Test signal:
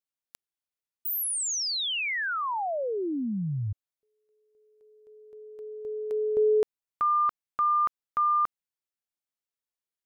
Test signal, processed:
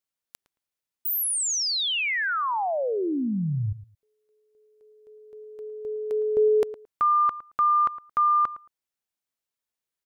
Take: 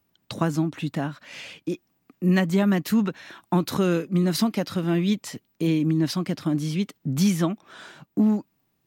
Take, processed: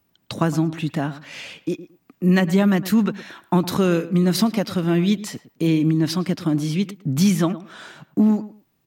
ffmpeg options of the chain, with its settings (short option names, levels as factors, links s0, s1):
-filter_complex "[0:a]asplit=2[s0][s1];[s1]adelay=111,lowpass=f=1900:p=1,volume=0.178,asplit=2[s2][s3];[s3]adelay=111,lowpass=f=1900:p=1,volume=0.18[s4];[s0][s2][s4]amix=inputs=3:normalize=0,volume=1.5"